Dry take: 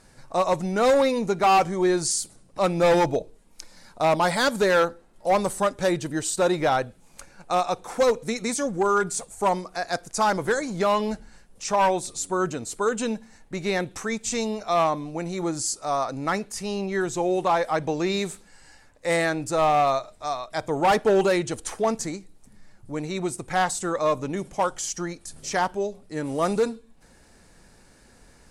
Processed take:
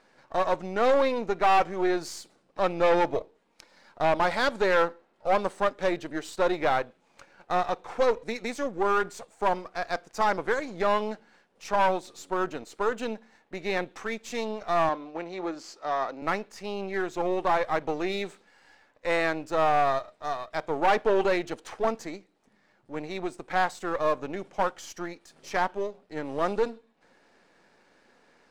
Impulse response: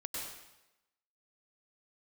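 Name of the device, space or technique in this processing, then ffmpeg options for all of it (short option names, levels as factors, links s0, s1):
crystal radio: -filter_complex "[0:a]highpass=310,lowpass=3500,aeval=exprs='if(lt(val(0),0),0.447*val(0),val(0))':c=same,asettb=1/sr,asplit=3[s0][s1][s2];[s0]atrim=end=14.894[s3];[s1]atrim=start=14.89:end=16.22,asetpts=PTS-STARTPTS,afade=t=in:d=0.004:c=qsin,afade=t=out:st=1.326:d=0.004:c=qsin,acrossover=split=190 6400:gain=0.141 1 0.178[s4][s5][s6];[s4][s5][s6]amix=inputs=3:normalize=0[s7];[s2]atrim=start=16.216[s8];[s3][s7]acrossfade=d=0.004:c1=hsin:c2=qsin[s9];[s9][s8]acrossfade=d=0.004:c1=qsin:c2=hsin"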